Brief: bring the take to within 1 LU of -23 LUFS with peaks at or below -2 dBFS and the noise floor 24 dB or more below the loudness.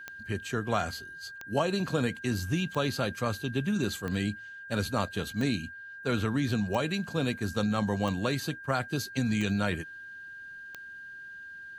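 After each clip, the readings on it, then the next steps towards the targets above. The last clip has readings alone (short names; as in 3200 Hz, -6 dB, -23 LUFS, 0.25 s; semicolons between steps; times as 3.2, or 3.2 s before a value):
clicks 9; steady tone 1600 Hz; tone level -42 dBFS; loudness -31.0 LUFS; peak -13.5 dBFS; loudness target -23.0 LUFS
-> de-click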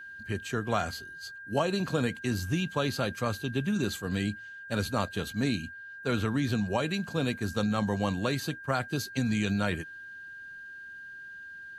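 clicks 0; steady tone 1600 Hz; tone level -42 dBFS
-> notch 1600 Hz, Q 30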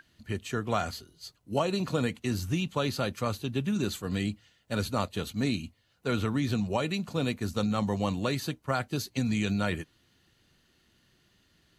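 steady tone none; loudness -31.0 LUFS; peak -13.5 dBFS; loudness target -23.0 LUFS
-> gain +8 dB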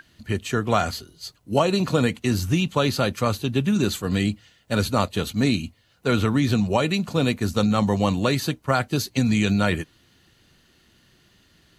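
loudness -23.0 LUFS; peak -5.5 dBFS; noise floor -60 dBFS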